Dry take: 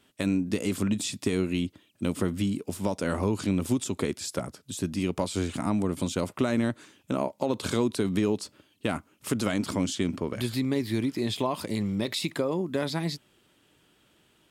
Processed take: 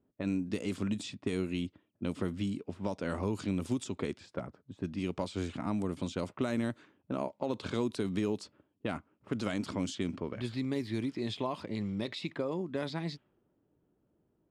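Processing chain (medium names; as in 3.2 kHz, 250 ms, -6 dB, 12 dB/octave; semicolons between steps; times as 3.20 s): level-controlled noise filter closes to 560 Hz, open at -21.5 dBFS; trim -6.5 dB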